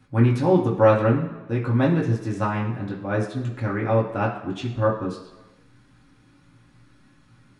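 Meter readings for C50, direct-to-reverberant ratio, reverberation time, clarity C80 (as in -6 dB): 7.0 dB, -5.0 dB, 1.2 s, 9.5 dB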